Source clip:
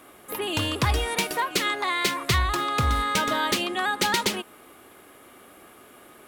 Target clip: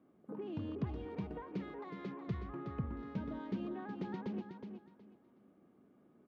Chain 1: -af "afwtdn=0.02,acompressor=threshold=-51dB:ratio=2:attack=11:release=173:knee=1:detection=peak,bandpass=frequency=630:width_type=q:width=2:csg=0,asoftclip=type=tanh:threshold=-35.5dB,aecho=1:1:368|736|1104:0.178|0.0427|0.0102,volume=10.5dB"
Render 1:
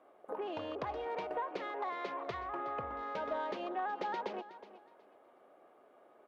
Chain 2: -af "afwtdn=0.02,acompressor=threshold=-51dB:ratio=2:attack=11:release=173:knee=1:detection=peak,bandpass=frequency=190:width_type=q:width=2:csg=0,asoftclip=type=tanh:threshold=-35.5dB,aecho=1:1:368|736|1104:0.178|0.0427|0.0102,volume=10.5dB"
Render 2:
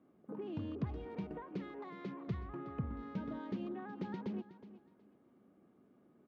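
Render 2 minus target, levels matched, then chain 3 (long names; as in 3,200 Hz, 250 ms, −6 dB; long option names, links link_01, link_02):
echo-to-direct −7.5 dB
-af "afwtdn=0.02,acompressor=threshold=-51dB:ratio=2:attack=11:release=173:knee=1:detection=peak,bandpass=frequency=190:width_type=q:width=2:csg=0,asoftclip=type=tanh:threshold=-35.5dB,aecho=1:1:368|736|1104:0.422|0.101|0.0243,volume=10.5dB"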